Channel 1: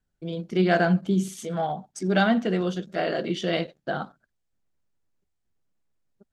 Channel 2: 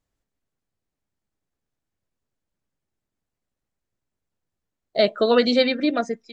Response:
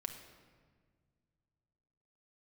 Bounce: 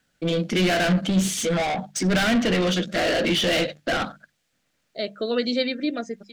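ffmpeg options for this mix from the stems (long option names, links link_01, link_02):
-filter_complex "[0:a]equalizer=frequency=390:width=6.6:gain=-12.5,asplit=2[link_01][link_02];[link_02]highpass=frequency=720:poles=1,volume=32dB,asoftclip=type=tanh:threshold=-8.5dB[link_03];[link_01][link_03]amix=inputs=2:normalize=0,lowpass=frequency=3400:poles=1,volume=-6dB,volume=-2.5dB,asplit=2[link_04][link_05];[1:a]volume=-3dB[link_06];[link_05]apad=whole_len=278853[link_07];[link_06][link_07]sidechaincompress=threshold=-34dB:ratio=3:attack=16:release=1410[link_08];[link_04][link_08]amix=inputs=2:normalize=0,equalizer=frequency=930:width=1.3:gain=-10,bandreject=frequency=50:width_type=h:width=6,bandreject=frequency=100:width_type=h:width=6,bandreject=frequency=150:width_type=h:width=6,bandreject=frequency=200:width_type=h:width=6"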